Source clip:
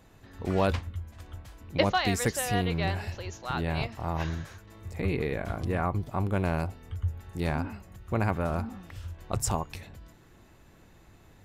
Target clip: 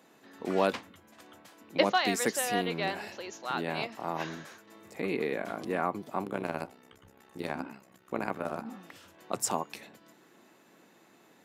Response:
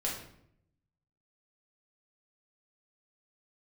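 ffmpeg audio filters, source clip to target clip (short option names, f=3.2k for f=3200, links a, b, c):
-filter_complex "[0:a]highpass=f=210:w=0.5412,highpass=f=210:w=1.3066,asplit=3[a][b][c];[a]afade=t=out:st=6.23:d=0.02[d];[b]tremolo=f=65:d=0.788,afade=t=in:st=6.23:d=0.02,afade=t=out:st=8.65:d=0.02[e];[c]afade=t=in:st=8.65:d=0.02[f];[d][e][f]amix=inputs=3:normalize=0"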